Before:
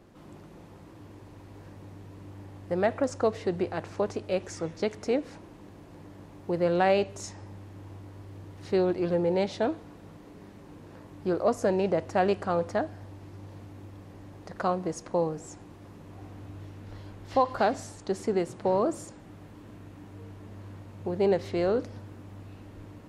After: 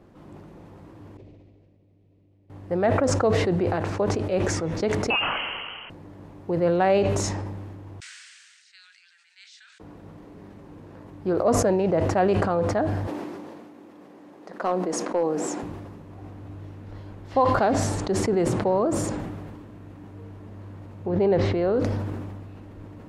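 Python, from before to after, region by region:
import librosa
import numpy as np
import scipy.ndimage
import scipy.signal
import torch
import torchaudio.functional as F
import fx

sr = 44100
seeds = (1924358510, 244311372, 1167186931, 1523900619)

y = fx.chain(x, sr, fx.band_shelf(hz=1200.0, db=-13.0, octaves=1.3),
    fx.level_steps(step_db=21),
    fx.lowpass(hz=4700.0, slope=12), at=(1.17, 2.5))
y = fx.chain(y, sr, fx.peak_eq(hz=2100.0, db=14.0, octaves=1.2),
    fx.freq_invert(carrier_hz=3100), at=(5.1, 5.9))
y = fx.chain(y, sr, fx.cheby1_bandpass(low_hz=1500.0, high_hz=8500.0, order=4),
    fx.differentiator(), at=(8.0, 9.8))
y = fx.chain(y, sr, fx.highpass(hz=220.0, slope=24),
    fx.clip_hard(threshold_db=-18.5), at=(13.07, 15.63))
y = fx.chain(y, sr, fx.air_absorb(metres=98.0),
    fx.pre_swell(db_per_s=48.0), at=(21.06, 21.74))
y = fx.high_shelf(y, sr, hz=2600.0, db=-8.5)
y = fx.sustainer(y, sr, db_per_s=27.0)
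y = F.gain(torch.from_numpy(y), 3.0).numpy()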